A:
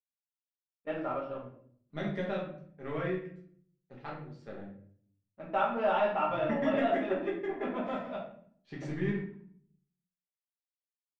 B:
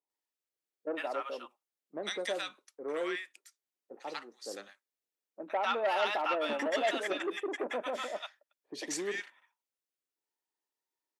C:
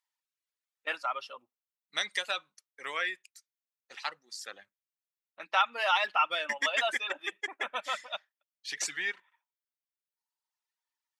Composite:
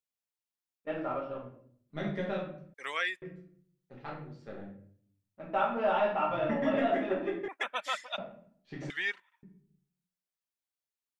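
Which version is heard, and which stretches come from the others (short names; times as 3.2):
A
2.74–3.22 from C
7.48–8.18 from C
8.9–9.43 from C
not used: B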